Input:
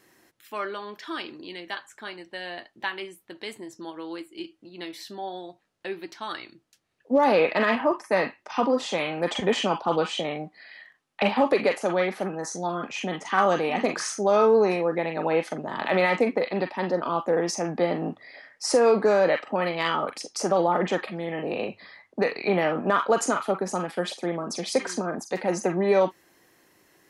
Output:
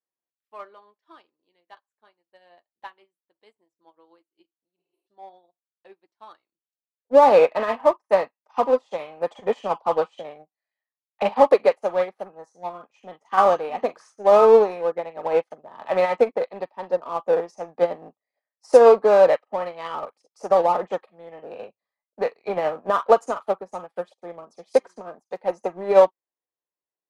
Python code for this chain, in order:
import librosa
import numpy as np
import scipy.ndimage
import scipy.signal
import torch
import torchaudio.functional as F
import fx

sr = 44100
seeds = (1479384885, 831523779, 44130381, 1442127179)

p1 = fx.spec_repair(x, sr, seeds[0], start_s=4.81, length_s=0.24, low_hz=240.0, high_hz=8200.0, source='before')
p2 = fx.band_shelf(p1, sr, hz=730.0, db=9.0, octaves=1.7)
p3 = np.clip(10.0 ** (22.0 / 20.0) * p2, -1.0, 1.0) / 10.0 ** (22.0 / 20.0)
p4 = p2 + (p3 * 10.0 ** (-6.0 / 20.0))
p5 = fx.upward_expand(p4, sr, threshold_db=-39.0, expansion=2.5)
y = p5 * 10.0 ** (1.0 / 20.0)